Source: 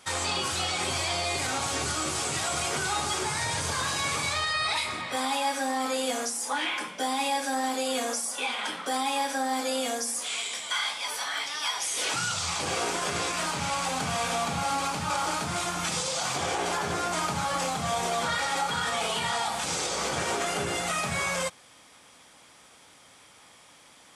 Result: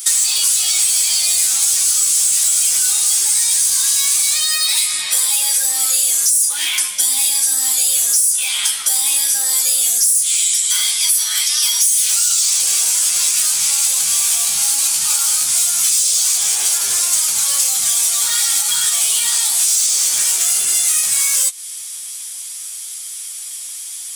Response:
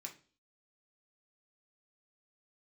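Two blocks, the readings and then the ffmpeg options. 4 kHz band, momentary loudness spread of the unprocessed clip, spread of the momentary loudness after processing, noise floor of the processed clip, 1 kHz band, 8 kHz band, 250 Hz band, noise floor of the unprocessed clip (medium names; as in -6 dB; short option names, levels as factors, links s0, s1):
+12.0 dB, 2 LU, 5 LU, -29 dBFS, -8.0 dB, +21.5 dB, under -15 dB, -55 dBFS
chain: -filter_complex "[0:a]flanger=delay=9.1:depth=5:regen=17:speed=0.17:shape=sinusoidal,asplit=2[s0][s1];[s1]aeval=exprs='0.0398*(abs(mod(val(0)/0.0398+3,4)-2)-1)':c=same,volume=0.501[s2];[s0][s2]amix=inputs=2:normalize=0,crystalizer=i=9.5:c=0,asoftclip=type=hard:threshold=0.355,crystalizer=i=8:c=0,acompressor=threshold=0.631:ratio=4,volume=0.335"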